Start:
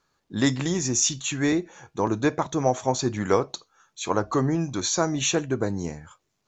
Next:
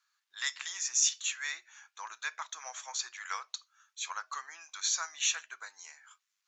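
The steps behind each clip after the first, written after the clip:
high-pass filter 1,300 Hz 24 dB per octave
level −4 dB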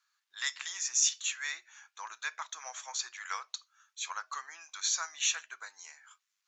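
no processing that can be heard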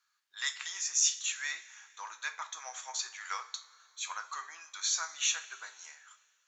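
coupled-rooms reverb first 0.31 s, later 2.2 s, from −18 dB, DRR 6.5 dB
level −1 dB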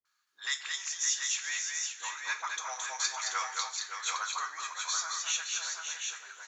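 speech leveller within 4 dB 0.5 s
all-pass dispersion highs, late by 53 ms, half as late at 590 Hz
on a send: multi-tap delay 219/565/710/735 ms −4.5/−8/−16.5/−5.5 dB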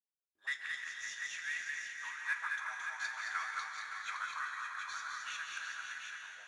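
envelope filter 280–1,700 Hz, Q 2.8, up, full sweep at −36 dBFS
dense smooth reverb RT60 2.6 s, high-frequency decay 0.85×, pre-delay 120 ms, DRR 3 dB
IMA ADPCM 88 kbit/s 22,050 Hz

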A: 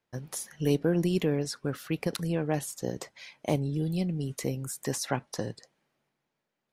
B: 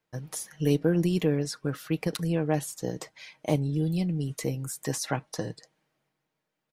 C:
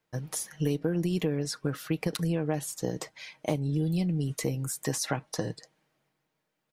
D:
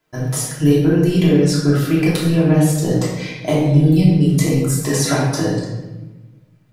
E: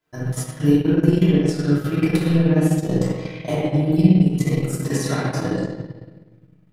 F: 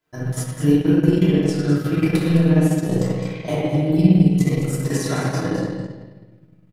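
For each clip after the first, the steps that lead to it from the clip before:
comb filter 6.4 ms, depth 40%
downward compressor 6 to 1, threshold −26 dBFS, peak gain reduction 8 dB; level +2 dB
rectangular room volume 650 cubic metres, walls mixed, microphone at 3 metres; level +6 dB
spring reverb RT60 1.1 s, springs 48/59 ms, chirp 70 ms, DRR −3.5 dB; transient designer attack +4 dB, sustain −10 dB; level −9 dB
single-tap delay 209 ms −9 dB

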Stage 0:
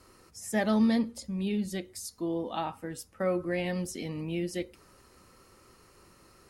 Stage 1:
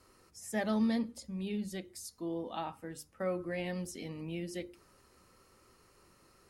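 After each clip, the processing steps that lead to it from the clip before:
mains-hum notches 50/100/150/200/250/300/350 Hz
level −5.5 dB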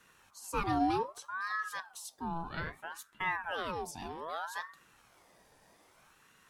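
ring modulator whose carrier an LFO sweeps 1,000 Hz, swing 50%, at 0.63 Hz
level +3 dB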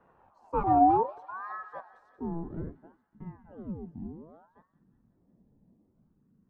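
low-pass filter sweep 760 Hz → 220 Hz, 0:01.57–0:03.12
delay with a high-pass on its return 182 ms, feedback 61%, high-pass 2,200 Hz, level −9.5 dB
level +3.5 dB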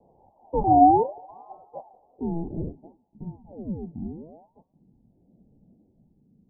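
Butterworth low-pass 860 Hz 72 dB per octave
level +6 dB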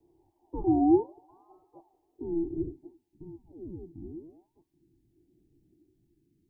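drawn EQ curve 120 Hz 0 dB, 220 Hz −13 dB, 340 Hz +13 dB, 520 Hz −18 dB, 1,000 Hz −6 dB, 1,700 Hz +12 dB
level −6 dB

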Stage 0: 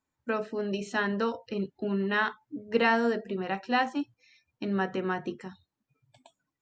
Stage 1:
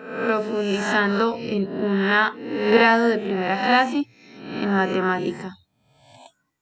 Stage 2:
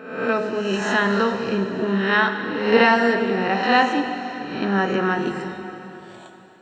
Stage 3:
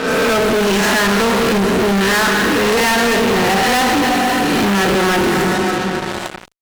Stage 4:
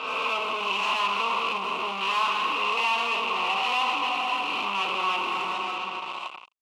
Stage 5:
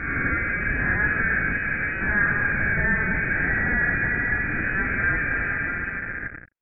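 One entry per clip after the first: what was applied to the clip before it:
peak hold with a rise ahead of every peak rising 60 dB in 0.80 s; level +7 dB
dense smooth reverb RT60 3.7 s, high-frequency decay 0.95×, DRR 6 dB
fuzz pedal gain 40 dB, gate −41 dBFS
pair of resonant band-passes 1,700 Hz, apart 1.3 octaves
voice inversion scrambler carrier 2,700 Hz; level +4 dB

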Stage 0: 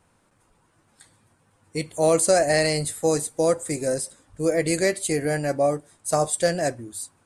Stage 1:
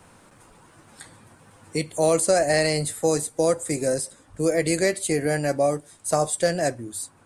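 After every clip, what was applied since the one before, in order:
multiband upward and downward compressor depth 40%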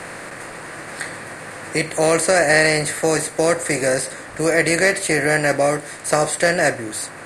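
compressor on every frequency bin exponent 0.6
parametric band 1,800 Hz +10 dB 1.3 octaves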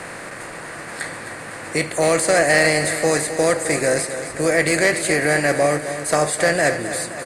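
soft clipping −5.5 dBFS, distortion −22 dB
on a send: repeating echo 262 ms, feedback 59%, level −11 dB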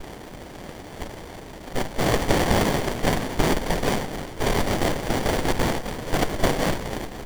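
hearing-aid frequency compression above 1,300 Hz 1.5 to 1
cochlear-implant simulation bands 1
windowed peak hold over 33 samples

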